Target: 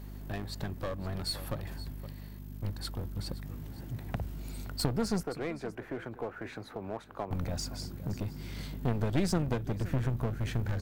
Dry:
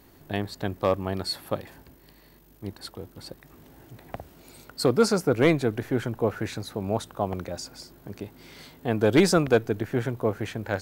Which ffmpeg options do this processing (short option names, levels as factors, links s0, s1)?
-filter_complex "[0:a]acompressor=threshold=0.0355:ratio=4,asubboost=boost=3.5:cutoff=240,aeval=exprs='val(0)+0.00794*(sin(2*PI*50*n/s)+sin(2*PI*2*50*n/s)/2+sin(2*PI*3*50*n/s)/3+sin(2*PI*4*50*n/s)/4+sin(2*PI*5*50*n/s)/5)':c=same,asettb=1/sr,asplit=3[s0][s1][s2];[s0]atrim=end=5.234[s3];[s1]atrim=start=5.23:end=7.31,asetpts=PTS-STARTPTS,afade=t=in:d=0.004:c=qsin,afade=t=out:st=2.076:d=0.004:c=qsin,acrossover=split=340 2500:gain=0.1 1 0.158[s4][s5][s6];[s4][s5][s6]amix=inputs=3:normalize=0[s7];[s2]atrim=start=7.306[s8];[s3][s7]acrossfade=d=0.004:c1=hsin:c2=qsin[s9];[s9][s8]acrossfade=d=0.004:c1=qsin:c2=hsin,aecho=1:1:519:0.133,aeval=exprs='clip(val(0),-1,0.0211)':c=same"